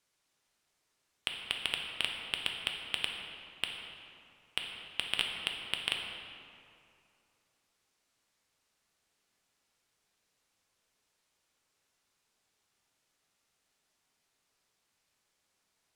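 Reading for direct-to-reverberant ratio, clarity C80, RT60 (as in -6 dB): 1.0 dB, 4.0 dB, 2.6 s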